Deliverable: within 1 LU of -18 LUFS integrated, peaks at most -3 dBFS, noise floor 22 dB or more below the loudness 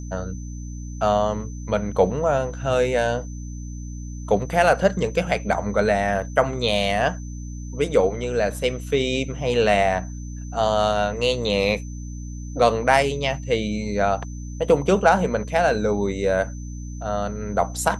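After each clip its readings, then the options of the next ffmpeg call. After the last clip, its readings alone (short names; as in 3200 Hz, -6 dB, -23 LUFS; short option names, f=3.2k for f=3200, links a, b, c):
hum 60 Hz; harmonics up to 300 Hz; hum level -30 dBFS; steady tone 6100 Hz; tone level -46 dBFS; loudness -22.0 LUFS; peak -1.5 dBFS; loudness target -18.0 LUFS
-> -af "bandreject=f=60:t=h:w=6,bandreject=f=120:t=h:w=6,bandreject=f=180:t=h:w=6,bandreject=f=240:t=h:w=6,bandreject=f=300:t=h:w=6"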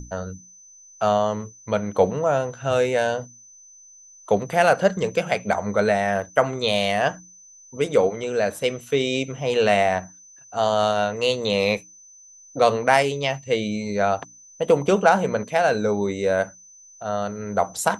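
hum none; steady tone 6100 Hz; tone level -46 dBFS
-> -af "bandreject=f=6.1k:w=30"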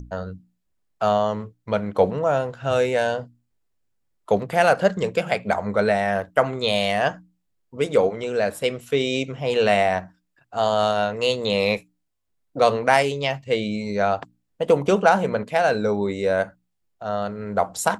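steady tone none; loudness -22.0 LUFS; peak -2.0 dBFS; loudness target -18.0 LUFS
-> -af "volume=4dB,alimiter=limit=-3dB:level=0:latency=1"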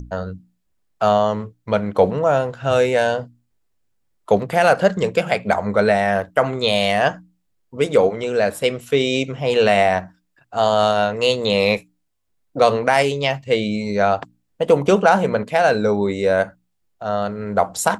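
loudness -18.5 LUFS; peak -3.0 dBFS; noise floor -70 dBFS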